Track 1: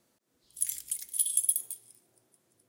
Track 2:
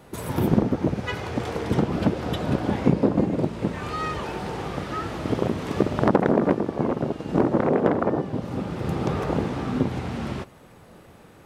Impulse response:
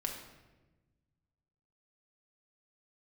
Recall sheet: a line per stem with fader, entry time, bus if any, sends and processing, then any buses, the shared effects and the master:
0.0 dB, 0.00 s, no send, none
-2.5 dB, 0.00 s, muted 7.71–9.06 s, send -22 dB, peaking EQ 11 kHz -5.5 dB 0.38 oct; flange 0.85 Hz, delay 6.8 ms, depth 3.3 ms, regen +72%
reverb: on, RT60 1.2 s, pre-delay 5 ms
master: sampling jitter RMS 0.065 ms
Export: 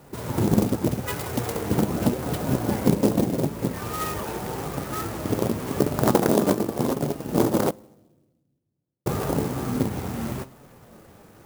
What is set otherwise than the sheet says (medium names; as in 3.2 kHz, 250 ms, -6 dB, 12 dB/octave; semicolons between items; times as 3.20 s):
stem 1 0.0 dB -> -9.5 dB; stem 2 -2.5 dB -> +3.5 dB